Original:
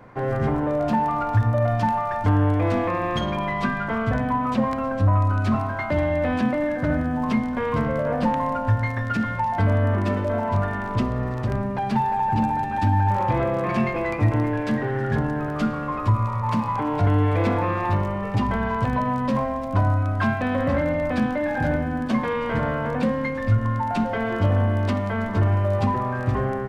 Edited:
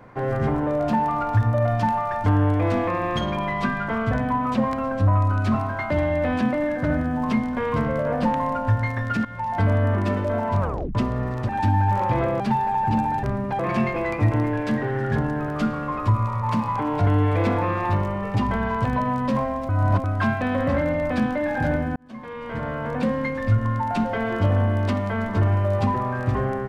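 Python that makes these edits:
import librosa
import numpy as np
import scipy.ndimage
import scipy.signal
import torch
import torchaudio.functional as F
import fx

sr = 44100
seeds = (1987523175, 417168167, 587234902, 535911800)

y = fx.edit(x, sr, fx.fade_in_from(start_s=9.25, length_s=0.34, floor_db=-14.0),
    fx.tape_stop(start_s=10.6, length_s=0.35),
    fx.swap(start_s=11.49, length_s=0.36, other_s=12.68, other_length_s=0.91),
    fx.reverse_span(start_s=19.69, length_s=0.35),
    fx.fade_in_span(start_s=21.96, length_s=1.19), tone=tone)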